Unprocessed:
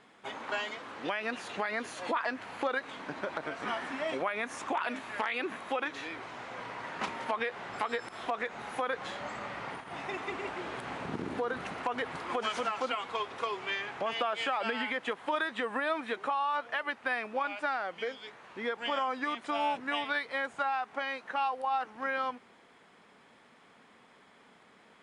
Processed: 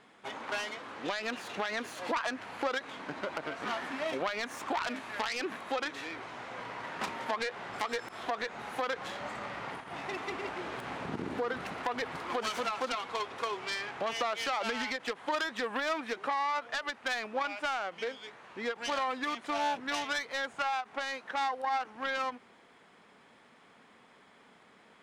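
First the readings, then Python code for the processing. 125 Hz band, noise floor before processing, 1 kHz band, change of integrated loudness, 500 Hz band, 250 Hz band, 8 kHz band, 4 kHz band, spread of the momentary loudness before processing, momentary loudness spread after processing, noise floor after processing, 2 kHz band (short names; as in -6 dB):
0.0 dB, -60 dBFS, -1.0 dB, -0.5 dB, -1.0 dB, -0.5 dB, +5.5 dB, +1.5 dB, 7 LU, 7 LU, -60 dBFS, -1.0 dB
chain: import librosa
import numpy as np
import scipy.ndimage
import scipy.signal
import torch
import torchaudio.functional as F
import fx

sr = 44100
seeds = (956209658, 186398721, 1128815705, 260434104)

y = fx.self_delay(x, sr, depth_ms=0.17)
y = fx.end_taper(y, sr, db_per_s=420.0)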